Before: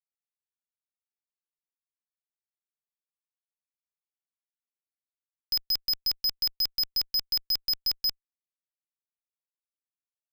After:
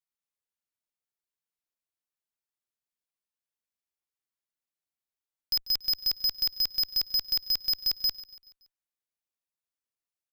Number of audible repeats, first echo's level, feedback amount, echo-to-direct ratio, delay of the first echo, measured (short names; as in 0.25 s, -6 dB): 3, -18.0 dB, 49%, -17.0 dB, 0.142 s